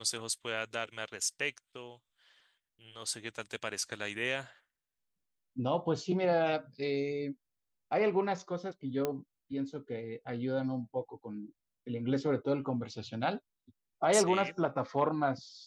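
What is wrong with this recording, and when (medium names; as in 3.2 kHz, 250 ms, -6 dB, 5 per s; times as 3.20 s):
9.05 s: pop -18 dBFS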